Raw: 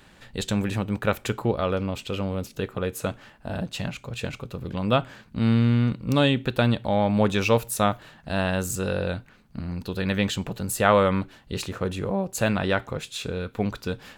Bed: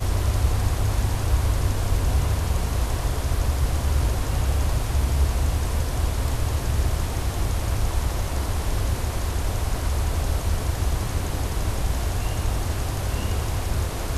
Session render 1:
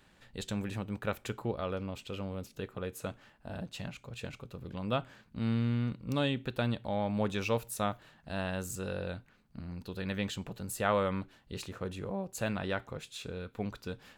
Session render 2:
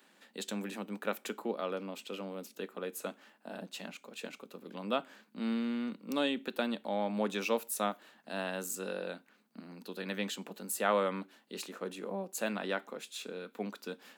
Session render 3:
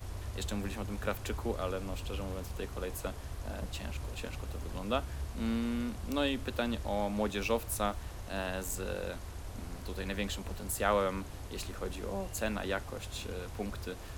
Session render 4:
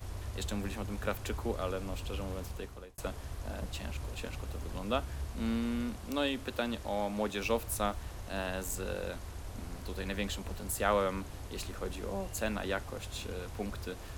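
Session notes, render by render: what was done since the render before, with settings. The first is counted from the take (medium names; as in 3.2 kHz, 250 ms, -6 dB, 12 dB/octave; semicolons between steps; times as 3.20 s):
trim -10.5 dB
steep high-pass 200 Hz 48 dB/octave; treble shelf 10 kHz +7.5 dB
add bed -18.5 dB
2.47–2.98 s: fade out; 5.96–7.44 s: bass shelf 130 Hz -7.5 dB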